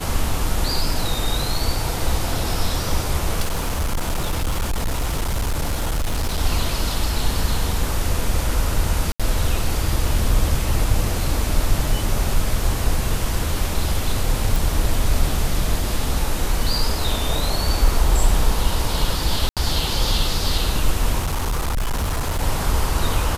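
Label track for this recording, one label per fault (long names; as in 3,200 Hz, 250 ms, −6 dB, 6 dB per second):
3.400000	6.400000	clipping −17.5 dBFS
9.120000	9.200000	drop-out 76 ms
14.560000	14.560000	click
19.490000	19.570000	drop-out 77 ms
21.190000	22.430000	clipping −18 dBFS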